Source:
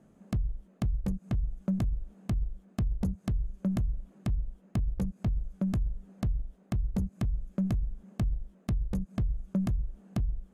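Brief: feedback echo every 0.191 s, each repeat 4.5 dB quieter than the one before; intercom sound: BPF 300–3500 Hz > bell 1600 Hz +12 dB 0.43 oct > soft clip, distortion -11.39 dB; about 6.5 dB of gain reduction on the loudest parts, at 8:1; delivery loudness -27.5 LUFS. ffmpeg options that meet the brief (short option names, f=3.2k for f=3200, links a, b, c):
-af "acompressor=threshold=-32dB:ratio=8,highpass=300,lowpass=3.5k,equalizer=f=1.6k:t=o:w=0.43:g=12,aecho=1:1:191|382|573|764|955|1146|1337|1528|1719:0.596|0.357|0.214|0.129|0.0772|0.0463|0.0278|0.0167|0.01,asoftclip=threshold=-32dB,volume=21dB"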